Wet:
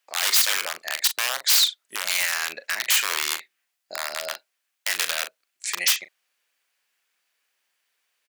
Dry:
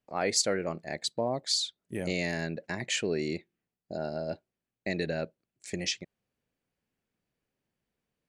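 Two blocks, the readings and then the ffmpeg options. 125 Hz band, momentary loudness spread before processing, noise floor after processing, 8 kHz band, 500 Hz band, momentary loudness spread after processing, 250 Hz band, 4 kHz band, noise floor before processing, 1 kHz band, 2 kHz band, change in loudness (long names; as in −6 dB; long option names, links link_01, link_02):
below −25 dB, 12 LU, −78 dBFS, +11.5 dB, −8.0 dB, 14 LU, −19.5 dB, +11.0 dB, below −85 dBFS, +6.0 dB, +11.0 dB, +10.0 dB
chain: -filter_complex "[0:a]aeval=exprs='(mod(15.8*val(0)+1,2)-1)/15.8':channel_layout=same,highpass=1400,asplit=2[link_01][link_02];[link_02]adelay=39,volume=-13dB[link_03];[link_01][link_03]amix=inputs=2:normalize=0,alimiter=level_in=24dB:limit=-1dB:release=50:level=0:latency=1,volume=-8dB"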